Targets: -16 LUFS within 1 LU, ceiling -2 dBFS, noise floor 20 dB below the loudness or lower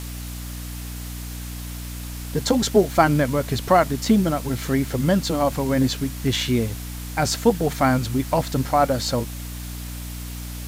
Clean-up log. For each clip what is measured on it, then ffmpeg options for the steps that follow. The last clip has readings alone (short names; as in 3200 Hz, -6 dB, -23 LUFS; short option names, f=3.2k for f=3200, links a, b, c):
hum 60 Hz; harmonics up to 300 Hz; hum level -31 dBFS; noise floor -33 dBFS; noise floor target -42 dBFS; loudness -21.5 LUFS; peak -3.5 dBFS; loudness target -16.0 LUFS
-> -af "bandreject=f=60:t=h:w=4,bandreject=f=120:t=h:w=4,bandreject=f=180:t=h:w=4,bandreject=f=240:t=h:w=4,bandreject=f=300:t=h:w=4"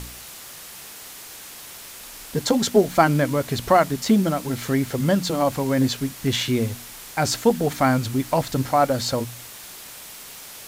hum none; noise floor -40 dBFS; noise floor target -42 dBFS
-> -af "afftdn=nr=6:nf=-40"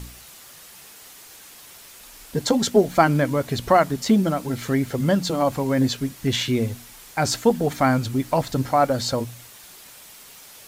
noise floor -45 dBFS; loudness -22.0 LUFS; peak -3.5 dBFS; loudness target -16.0 LUFS
-> -af "volume=6dB,alimiter=limit=-2dB:level=0:latency=1"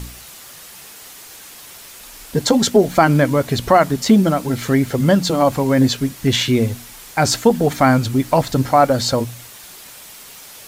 loudness -16.5 LUFS; peak -2.0 dBFS; noise floor -39 dBFS